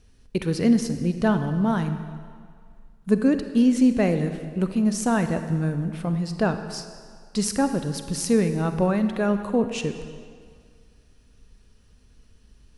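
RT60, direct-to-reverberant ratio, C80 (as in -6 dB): 2.0 s, 8.5 dB, 10.0 dB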